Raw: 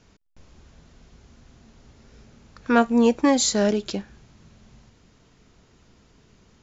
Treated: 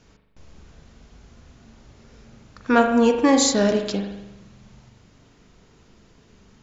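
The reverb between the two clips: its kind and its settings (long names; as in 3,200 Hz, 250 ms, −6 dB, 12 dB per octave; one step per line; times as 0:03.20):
spring reverb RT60 1 s, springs 40 ms, chirp 40 ms, DRR 4.5 dB
level +1.5 dB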